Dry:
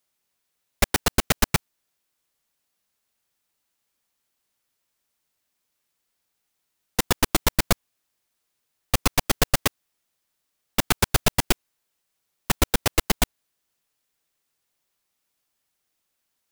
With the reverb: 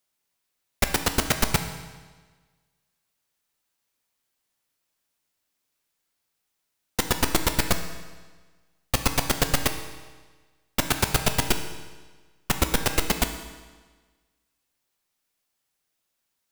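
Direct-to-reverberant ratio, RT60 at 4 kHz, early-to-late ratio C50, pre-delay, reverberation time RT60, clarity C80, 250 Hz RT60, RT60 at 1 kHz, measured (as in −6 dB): 6.0 dB, 1.3 s, 8.5 dB, 6 ms, 1.4 s, 10.0 dB, 1.4 s, 1.4 s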